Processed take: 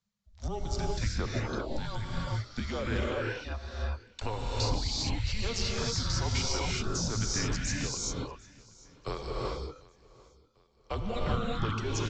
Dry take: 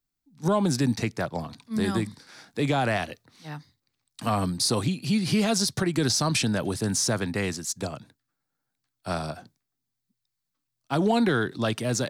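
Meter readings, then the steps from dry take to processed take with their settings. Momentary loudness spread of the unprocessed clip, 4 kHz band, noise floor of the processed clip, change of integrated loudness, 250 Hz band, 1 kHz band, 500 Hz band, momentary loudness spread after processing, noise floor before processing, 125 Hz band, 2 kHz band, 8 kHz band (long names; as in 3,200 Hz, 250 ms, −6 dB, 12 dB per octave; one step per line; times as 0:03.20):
14 LU, −4.0 dB, −63 dBFS, −7.0 dB, −11.5 dB, −7.0 dB, −7.5 dB, 9 LU, −83 dBFS, −3.5 dB, −6.0 dB, −5.5 dB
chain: reverb reduction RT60 1.3 s
downward compressor 6 to 1, threshold −34 dBFS, peak gain reduction 14.5 dB
frequency shifter −220 Hz
repeating echo 746 ms, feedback 45%, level −23 dB
reverb whose tail is shaped and stops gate 420 ms rising, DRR −3.5 dB
downsampling to 16,000 Hz
level +1.5 dB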